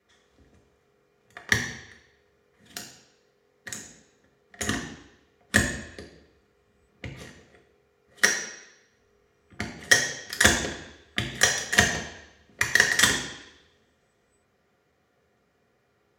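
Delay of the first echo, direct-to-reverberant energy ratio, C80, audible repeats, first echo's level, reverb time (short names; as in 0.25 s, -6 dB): none, -1.0 dB, 9.5 dB, none, none, 0.85 s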